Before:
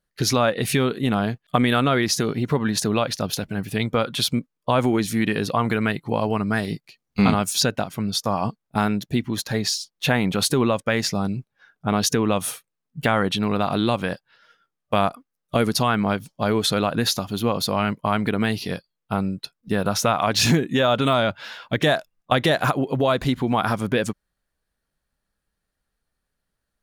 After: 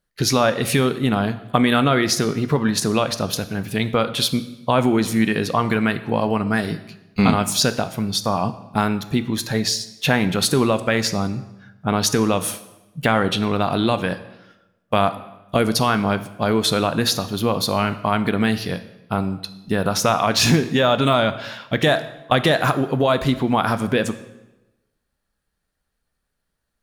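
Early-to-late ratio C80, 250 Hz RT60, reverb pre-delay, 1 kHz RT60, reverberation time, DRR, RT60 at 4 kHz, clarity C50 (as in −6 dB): 16.0 dB, 1.0 s, 9 ms, 1.0 s, 1.0 s, 11.0 dB, 0.85 s, 14.0 dB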